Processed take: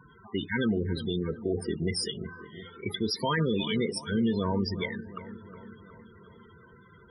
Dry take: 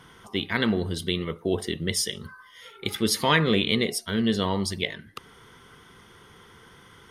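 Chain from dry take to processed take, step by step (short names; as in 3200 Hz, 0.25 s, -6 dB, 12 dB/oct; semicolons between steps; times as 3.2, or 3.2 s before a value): loudest bins only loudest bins 16; limiter -19 dBFS, peak gain reduction 8 dB; analogue delay 0.363 s, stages 4096, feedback 61%, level -14 dB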